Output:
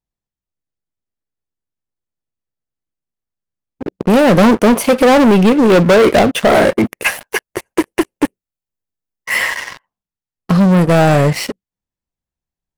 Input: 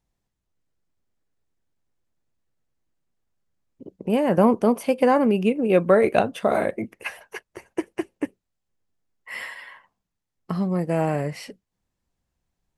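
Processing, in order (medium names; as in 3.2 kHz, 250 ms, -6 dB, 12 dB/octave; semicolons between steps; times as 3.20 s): 6.76–9.38 s: treble shelf 10 kHz +12 dB; waveshaping leveller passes 5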